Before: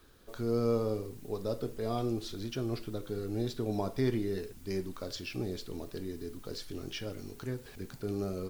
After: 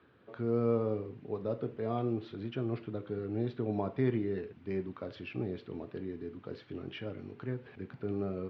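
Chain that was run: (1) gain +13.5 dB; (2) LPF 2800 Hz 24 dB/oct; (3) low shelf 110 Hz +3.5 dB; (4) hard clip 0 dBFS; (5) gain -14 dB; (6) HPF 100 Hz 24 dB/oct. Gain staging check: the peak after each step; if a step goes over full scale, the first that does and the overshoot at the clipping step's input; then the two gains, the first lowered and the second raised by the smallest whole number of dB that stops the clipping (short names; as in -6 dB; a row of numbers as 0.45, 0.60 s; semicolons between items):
-6.0, -6.0, -5.5, -5.5, -19.5, -18.5 dBFS; no overload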